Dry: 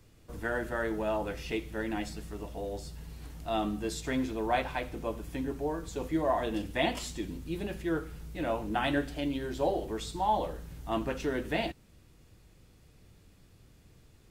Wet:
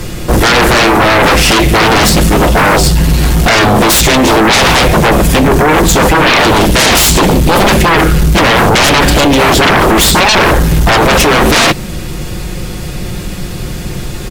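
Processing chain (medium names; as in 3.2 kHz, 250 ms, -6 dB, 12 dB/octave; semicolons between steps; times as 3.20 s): in parallel at +0.5 dB: compressor with a negative ratio -36 dBFS, ratio -0.5; on the sum: comb 5.6 ms, depth 48%; sine folder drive 18 dB, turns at -12.5 dBFS; trim +8.5 dB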